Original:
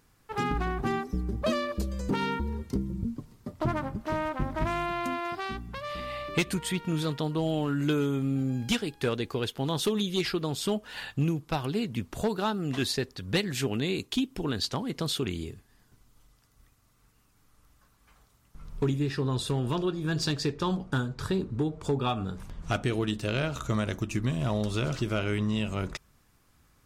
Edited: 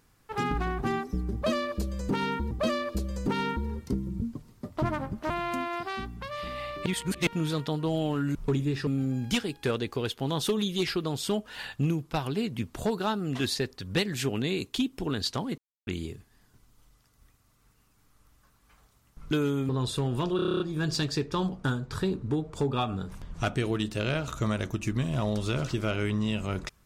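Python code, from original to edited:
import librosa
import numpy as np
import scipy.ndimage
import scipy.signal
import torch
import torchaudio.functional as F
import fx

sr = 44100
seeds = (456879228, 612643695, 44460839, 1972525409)

y = fx.edit(x, sr, fx.repeat(start_s=1.34, length_s=1.17, count=2),
    fx.cut(start_s=4.13, length_s=0.69),
    fx.reverse_span(start_s=6.38, length_s=0.41),
    fx.swap(start_s=7.87, length_s=0.38, other_s=18.69, other_length_s=0.52),
    fx.silence(start_s=14.96, length_s=0.29),
    fx.stutter(start_s=19.88, slice_s=0.03, count=9), tone=tone)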